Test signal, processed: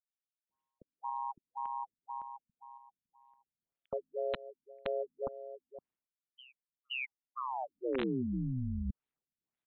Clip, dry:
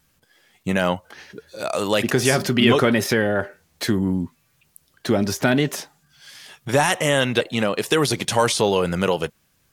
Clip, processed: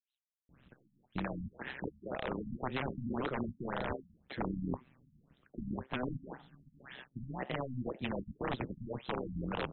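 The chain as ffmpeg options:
ffmpeg -i in.wav -filter_complex "[0:a]areverse,acompressor=threshold=-32dB:ratio=16,areverse,tremolo=f=130:d=1,equalizer=frequency=190:width_type=o:width=1.6:gain=6,acrossover=split=5100[link_01][link_02];[link_01]adelay=490[link_03];[link_03][link_02]amix=inputs=2:normalize=0,acrossover=split=430|3200[link_04][link_05][link_06];[link_04]acompressor=threshold=-38dB:ratio=4[link_07];[link_05]acompressor=threshold=-40dB:ratio=4[link_08];[link_06]acompressor=threshold=-55dB:ratio=4[link_09];[link_07][link_08][link_09]amix=inputs=3:normalize=0,aeval=exprs='(mod(31.6*val(0)+1,2)-1)/31.6':channel_layout=same,afftfilt=real='re*lt(b*sr/1024,250*pow(4200/250,0.5+0.5*sin(2*PI*1.9*pts/sr)))':imag='im*lt(b*sr/1024,250*pow(4200/250,0.5+0.5*sin(2*PI*1.9*pts/sr)))':win_size=1024:overlap=0.75,volume=4.5dB" out.wav

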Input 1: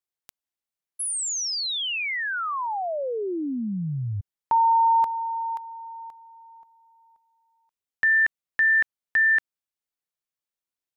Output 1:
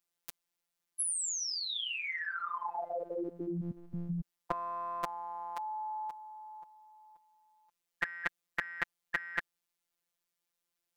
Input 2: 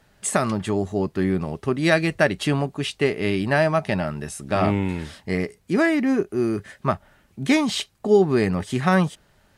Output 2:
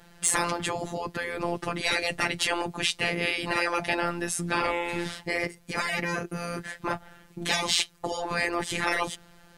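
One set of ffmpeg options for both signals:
ffmpeg -i in.wav -af "afftfilt=real='hypot(re,im)*cos(PI*b)':imag='0':win_size=1024:overlap=0.75,acontrast=61,afftfilt=real='re*lt(hypot(re,im),0.316)':imag='im*lt(hypot(re,im),0.316)':win_size=1024:overlap=0.75,volume=2dB" out.wav

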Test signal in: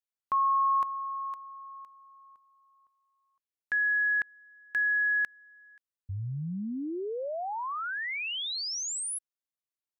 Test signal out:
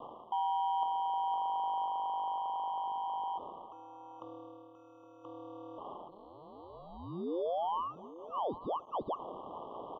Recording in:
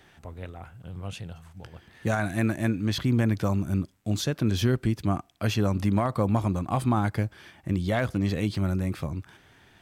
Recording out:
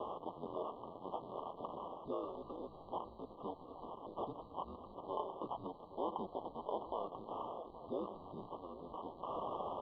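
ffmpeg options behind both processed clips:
ffmpeg -i in.wav -filter_complex "[0:a]aeval=exprs='val(0)+0.5*0.0211*sgn(val(0))':channel_layout=same,alimiter=limit=-21.5dB:level=0:latency=1:release=27,areverse,acompressor=threshold=-36dB:ratio=4:attack=21:release=687:knee=1:detection=peak,areverse,acrusher=samples=10:mix=1:aa=0.000001,highpass=frequency=580:width_type=q:width=0.5412,highpass=frequency=580:width_type=q:width=1.307,lowpass=frequency=2700:width_type=q:width=0.5176,lowpass=frequency=2700:width_type=q:width=0.7071,lowpass=frequency=2700:width_type=q:width=1.932,afreqshift=-220,asplit=2[link_01][link_02];[link_02]adelay=816.3,volume=-14dB,highshelf=frequency=4000:gain=-18.4[link_03];[link_01][link_03]amix=inputs=2:normalize=0,aeval=exprs='val(0)*sin(2*PI*86*n/s)':channel_layout=same,asuperstop=centerf=1900:order=20:qfactor=1,volume=6.5dB" out.wav

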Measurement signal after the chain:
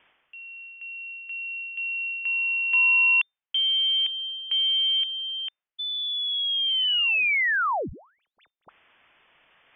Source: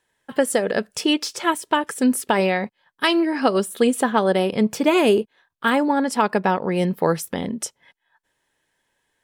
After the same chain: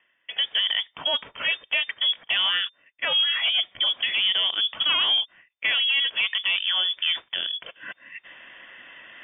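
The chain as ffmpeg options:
ffmpeg -i in.wav -filter_complex "[0:a]areverse,acompressor=mode=upward:threshold=-26dB:ratio=2.5,areverse,alimiter=limit=-13dB:level=0:latency=1:release=25,asplit=2[link_01][link_02];[link_02]highpass=frequency=720:poles=1,volume=11dB,asoftclip=type=tanh:threshold=-13dB[link_03];[link_01][link_03]amix=inputs=2:normalize=0,lowpass=frequency=2400:poles=1,volume=-6dB,lowpass=frequency=3100:width_type=q:width=0.5098,lowpass=frequency=3100:width_type=q:width=0.6013,lowpass=frequency=3100:width_type=q:width=0.9,lowpass=frequency=3100:width_type=q:width=2.563,afreqshift=-3600,volume=-1.5dB" out.wav

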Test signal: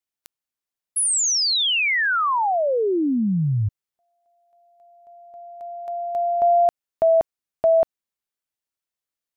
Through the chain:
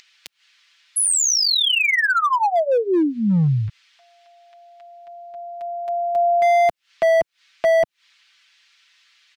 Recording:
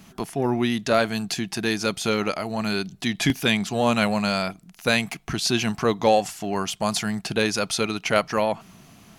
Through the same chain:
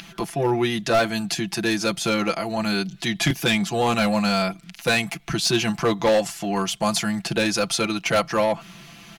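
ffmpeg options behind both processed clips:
ffmpeg -i in.wav -filter_complex "[0:a]aecho=1:1:5.9:0.82,acrossover=split=150|1600|4600[link_01][link_02][link_03][link_04];[link_03]acompressor=mode=upward:threshold=-42dB:ratio=4:attack=10:release=117:knee=2.83:detection=peak[link_05];[link_01][link_02][link_05][link_04]amix=inputs=4:normalize=0,asoftclip=type=hard:threshold=-13.5dB" out.wav

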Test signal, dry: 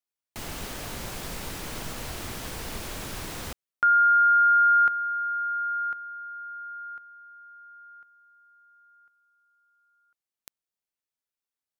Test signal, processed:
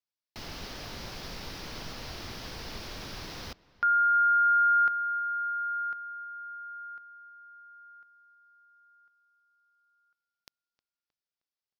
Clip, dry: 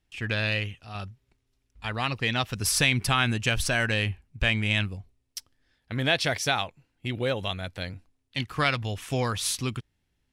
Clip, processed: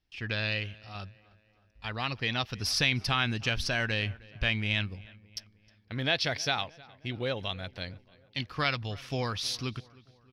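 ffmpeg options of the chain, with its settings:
ffmpeg -i in.wav -filter_complex "[0:a]highshelf=frequency=6400:width_type=q:width=3:gain=-7.5,asplit=2[link_01][link_02];[link_02]adelay=312,lowpass=frequency=3000:poles=1,volume=-22dB,asplit=2[link_03][link_04];[link_04]adelay=312,lowpass=frequency=3000:poles=1,volume=0.55,asplit=2[link_05][link_06];[link_06]adelay=312,lowpass=frequency=3000:poles=1,volume=0.55,asplit=2[link_07][link_08];[link_08]adelay=312,lowpass=frequency=3000:poles=1,volume=0.55[link_09];[link_01][link_03][link_05][link_07][link_09]amix=inputs=5:normalize=0,volume=-5dB" out.wav

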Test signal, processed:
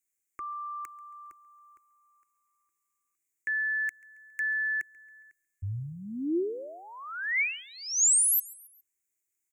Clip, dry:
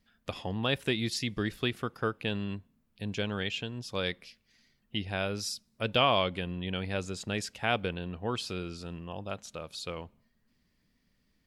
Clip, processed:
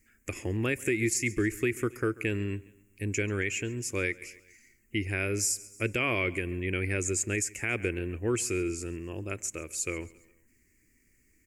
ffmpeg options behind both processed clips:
ffmpeg -i in.wav -af "firequalizer=gain_entry='entry(110,0);entry(170,-11);entry(340,7);entry(480,-5);entry(770,-16);entry(2200,8);entry(3500,-22);entry(7000,14);entry(9900,8)':delay=0.05:min_phase=1,aecho=1:1:137|274|411:0.075|0.0375|0.0187,alimiter=limit=-23.5dB:level=0:latency=1:release=144,volume=5.5dB" out.wav

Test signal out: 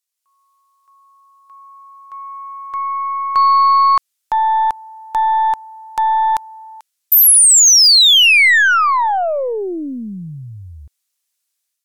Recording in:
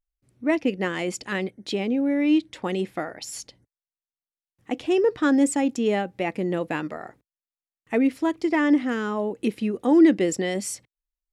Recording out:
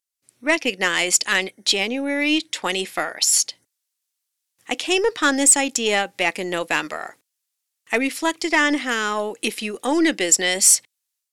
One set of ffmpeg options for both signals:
ffmpeg -i in.wav -af "dynaudnorm=framelen=100:gausssize=5:maxgain=8dB,highpass=frequency=1100:poles=1,aeval=exprs='0.398*(cos(1*acos(clip(val(0)/0.398,-1,1)))-cos(1*PI/2))+0.0316*(cos(2*acos(clip(val(0)/0.398,-1,1)))-cos(2*PI/2))+0.0282*(cos(4*acos(clip(val(0)/0.398,-1,1)))-cos(4*PI/2))':channel_layout=same,equalizer=frequency=9000:width=0.31:gain=11,apsyclip=6.5dB,volume=-5.5dB" out.wav

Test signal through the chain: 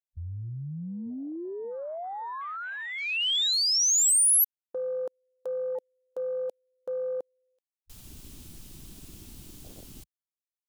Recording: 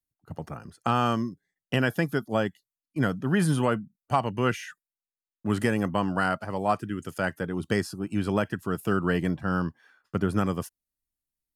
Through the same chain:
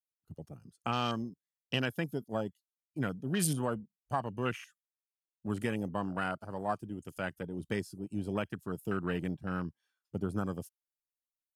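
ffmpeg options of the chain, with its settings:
ffmpeg -i in.wav -af "aexciter=amount=5.1:drive=0.8:freq=2700,afwtdn=0.0282,volume=-8.5dB" out.wav

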